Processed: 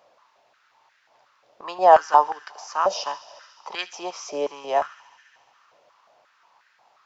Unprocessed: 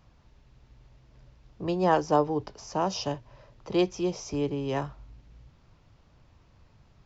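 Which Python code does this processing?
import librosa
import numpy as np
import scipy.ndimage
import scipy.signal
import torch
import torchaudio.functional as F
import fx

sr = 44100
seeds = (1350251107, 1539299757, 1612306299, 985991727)

y = fx.echo_wet_highpass(x, sr, ms=71, feedback_pct=84, hz=1900.0, wet_db=-17.5)
y = fx.filter_held_highpass(y, sr, hz=5.6, low_hz=590.0, high_hz=1600.0)
y = y * librosa.db_to_amplitude(3.0)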